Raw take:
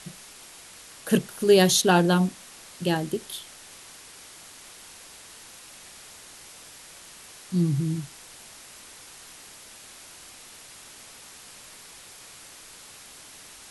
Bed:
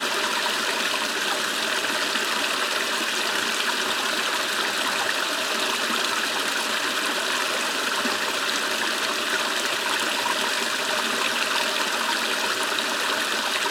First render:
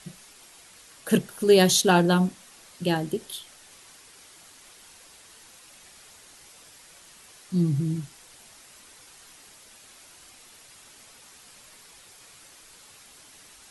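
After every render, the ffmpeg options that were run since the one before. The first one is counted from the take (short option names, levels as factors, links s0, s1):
-af "afftdn=nr=6:nf=-47"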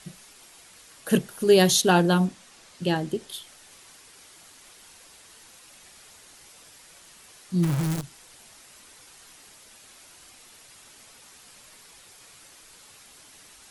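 -filter_complex "[0:a]asettb=1/sr,asplit=3[s0][s1][s2];[s0]atrim=end=2.254[s3];[s1]atrim=start=2.25:end=3.34,asetpts=PTS-STARTPTS,afade=t=in:d=0.004:c=qsin,afade=t=out:st=1.086:d=0.004:c=qsin,lowpass=9000[s4];[s2]atrim=start=3.336[s5];[s3][s4]acrossfade=d=0.004:c1=hsin:c2=qsin[s6];[s6][s5]acrossfade=d=0.004:c1=qsin:c2=hsin,asplit=3[s7][s8][s9];[s7]afade=t=out:st=7.62:d=0.02[s10];[s8]acrusher=bits=6:dc=4:mix=0:aa=0.000001,afade=t=in:st=7.62:d=0.02,afade=t=out:st=8.02:d=0.02[s11];[s9]afade=t=in:st=8.02:d=0.02[s12];[s10][s11][s12]amix=inputs=3:normalize=0"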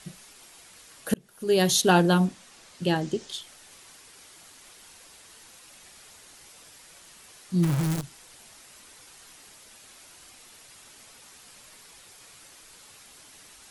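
-filter_complex "[0:a]asettb=1/sr,asplit=3[s0][s1][s2];[s0]atrim=end=3.014[s3];[s1]atrim=start=3.01:end=3.41,asetpts=PTS-STARTPTS,afade=t=in:d=0.004:c=qsin,afade=t=out:st=0.396:d=0.004:c=qsin,lowpass=f=6500:t=q:w=1.9[s4];[s2]atrim=start=3.406[s5];[s3][s4]acrossfade=d=0.004:c1=hsin:c2=qsin[s6];[s6][s5]acrossfade=d=0.004:c1=qsin:c2=hsin,asplit=2[s7][s8];[s7]atrim=end=1.14,asetpts=PTS-STARTPTS,afade=t=out:st=1.136:d=0.004:c=hsin[s9];[s8]atrim=start=1.14,asetpts=PTS-STARTPTS,afade=t=in:d=0.74[s10];[s9][s10]concat=n=2:v=0:a=1"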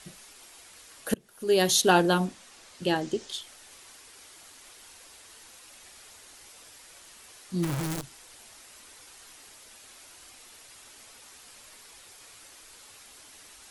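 -af "equalizer=f=160:w=2:g=-8"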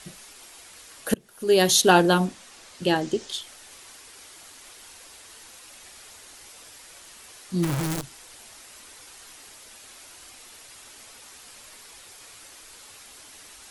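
-af "volume=1.58"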